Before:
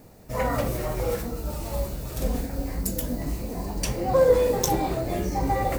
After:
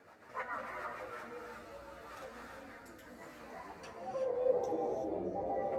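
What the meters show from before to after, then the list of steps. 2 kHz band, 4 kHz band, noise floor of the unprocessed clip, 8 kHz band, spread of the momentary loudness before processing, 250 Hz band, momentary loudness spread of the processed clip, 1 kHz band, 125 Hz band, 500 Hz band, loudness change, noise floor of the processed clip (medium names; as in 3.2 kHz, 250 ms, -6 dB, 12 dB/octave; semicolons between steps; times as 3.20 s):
-9.5 dB, -21.0 dB, -44 dBFS, -28.0 dB, 12 LU, -16.5 dB, 17 LU, -12.0 dB, -27.0 dB, -12.5 dB, -13.5 dB, -55 dBFS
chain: treble shelf 11 kHz +3 dB; compression 2.5:1, threshold -42 dBFS, peak gain reduction 18.5 dB; band-pass sweep 1.4 kHz -> 570 Hz, 3.75–4.52 s; rotary cabinet horn 7 Hz, later 0.9 Hz, at 0.76 s; gated-style reverb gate 400 ms rising, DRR 2.5 dB; chorus voices 4, 0.64 Hz, delay 11 ms, depth 2.4 ms; trim +13 dB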